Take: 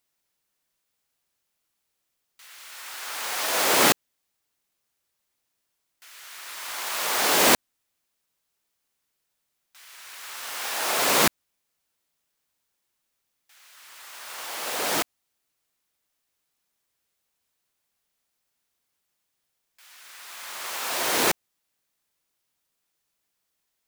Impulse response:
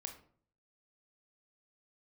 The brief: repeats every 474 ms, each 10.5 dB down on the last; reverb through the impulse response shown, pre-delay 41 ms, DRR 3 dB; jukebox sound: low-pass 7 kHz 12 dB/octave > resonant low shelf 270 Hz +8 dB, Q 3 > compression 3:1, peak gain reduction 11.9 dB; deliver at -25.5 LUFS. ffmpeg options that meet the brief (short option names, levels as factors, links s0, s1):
-filter_complex "[0:a]aecho=1:1:474|948|1422:0.299|0.0896|0.0269,asplit=2[s0][s1];[1:a]atrim=start_sample=2205,adelay=41[s2];[s1][s2]afir=irnorm=-1:irlink=0,volume=1[s3];[s0][s3]amix=inputs=2:normalize=0,lowpass=7000,lowshelf=f=270:t=q:w=3:g=8,acompressor=threshold=0.0398:ratio=3,volume=2"